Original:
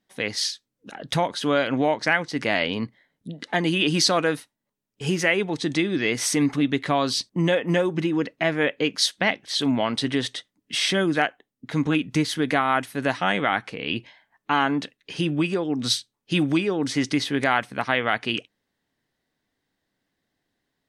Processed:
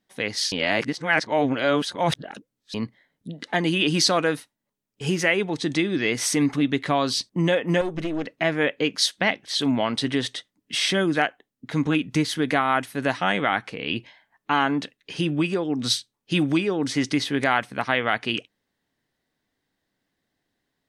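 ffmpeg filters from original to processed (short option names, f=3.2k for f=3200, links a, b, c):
-filter_complex "[0:a]asettb=1/sr,asplit=3[a][b][c];[a]atrim=end=7.814[d];[b]atrim=start=7.81:end=8.27,asetpts=PTS-STARTPTS,afade=t=in:d=0.004:c=qsin,afade=t=out:st=0.456:d=0.004:c=qsin,aeval=exprs='(tanh(11.2*val(0)+0.65)-tanh(0.65))/11.2':c=same[e];[c]atrim=start=8.266[f];[d][e]acrossfade=d=0.004:c1=hsin:c2=qsin[g];[g][f]acrossfade=d=0.004:c1=qsin:c2=hsin,asplit=3[h][i][j];[h]atrim=end=0.522[k];[i]atrim=start=0.518:end=2.742,asetpts=PTS-STARTPTS,areverse[l];[j]atrim=start=2.738[m];[k][l]acrossfade=d=0.004:c1=hsin:c2=hsin[n];[n][m]acrossfade=d=0.004:c1=hsin:c2=hsin"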